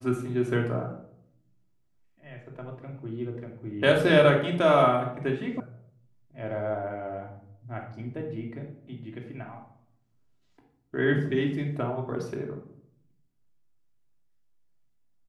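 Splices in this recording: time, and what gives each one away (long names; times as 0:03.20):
0:05.60: cut off before it has died away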